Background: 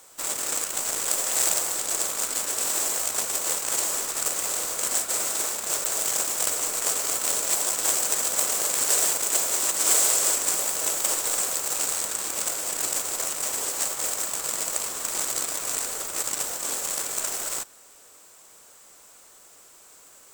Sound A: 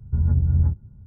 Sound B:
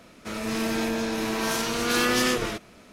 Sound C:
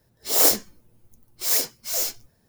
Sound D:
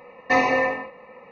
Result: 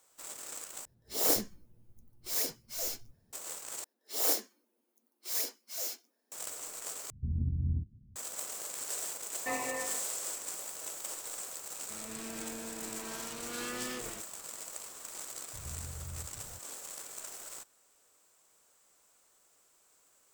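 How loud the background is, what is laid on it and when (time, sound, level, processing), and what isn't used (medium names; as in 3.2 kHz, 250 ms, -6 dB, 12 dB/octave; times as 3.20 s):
background -16 dB
0.85 s: replace with C -11 dB + bass shelf 350 Hz +9 dB
3.84 s: replace with C -12 dB + steep high-pass 230 Hz 72 dB/octave
7.10 s: replace with A -14 dB + resonant low-pass 280 Hz, resonance Q 2.6
9.16 s: add D -17 dB
11.64 s: add B -17 dB
15.53 s: add A -8.5 dB + compression, threshold -34 dBFS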